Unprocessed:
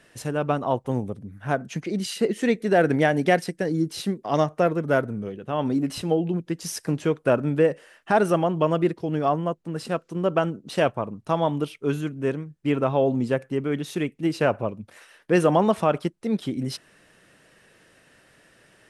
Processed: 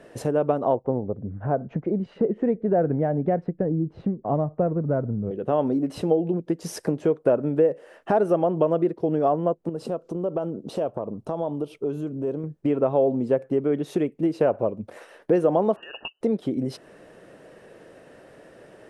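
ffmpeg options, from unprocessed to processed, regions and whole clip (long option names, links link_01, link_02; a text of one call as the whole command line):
ffmpeg -i in.wav -filter_complex "[0:a]asettb=1/sr,asplit=3[link_01][link_02][link_03];[link_01]atrim=end=0.754[link_04];[link_02]atrim=start=0.75:end=5.31,asetpts=PTS-STARTPTS,afade=type=in:duration=0.004:curve=qsin,afade=type=out:start_time=4.556:duration=0.004:curve=qsin,asubboost=boost=7:cutoff=160,lowpass=1300[link_05];[link_03]atrim=start=5.306[link_06];[link_04][link_05]acrossfade=duration=0.004:curve1=hsin:curve2=qsin[link_07];[link_07][link_06]acrossfade=duration=0.004:curve1=qsin:curve2=hsin,asettb=1/sr,asplit=3[link_08][link_09][link_10];[link_08]atrim=end=9.694[link_11];[link_09]atrim=start=9.69:end=12.44,asetpts=PTS-STARTPTS,afade=type=in:duration=0.004:curve=qsin,afade=type=out:start_time=2.746:duration=0.004:curve=qsin,equalizer=frequency=1900:width=1.9:gain=-9,acompressor=threshold=-37dB:ratio=4:attack=3.2:release=140:knee=1:detection=peak[link_12];[link_10]atrim=start=12.436[link_13];[link_11][link_12]acrossfade=duration=0.004:curve1=hsin:curve2=qsin[link_14];[link_14][link_13]acrossfade=duration=0.004:curve1=qsin:curve2=hsin,asettb=1/sr,asplit=3[link_15][link_16][link_17];[link_15]atrim=end=15.764[link_18];[link_16]atrim=start=15.76:end=16.21,asetpts=PTS-STARTPTS,afade=type=in:duration=0.004:curve=qsin,afade=type=out:start_time=0.446:duration=0.004:curve=qsin,lowpass=frequency=2600:width_type=q:width=0.5098,lowpass=frequency=2600:width_type=q:width=0.6013,lowpass=frequency=2600:width_type=q:width=0.9,lowpass=frequency=2600:width_type=q:width=2.563,afreqshift=-3000,acompressor=threshold=-26dB:ratio=6:attack=3.2:release=140:knee=1:detection=peak,asuperstop=centerf=2200:order=12:qfactor=2.8[link_19];[link_17]atrim=start=16.206[link_20];[link_18][link_19]acrossfade=duration=0.004:curve1=hsin:curve2=qsin[link_21];[link_21][link_20]acrossfade=duration=0.004:curve1=qsin:curve2=hsin,tiltshelf=frequency=810:gain=3.5,acompressor=threshold=-30dB:ratio=4,equalizer=frequency=530:width=0.61:gain=13" out.wav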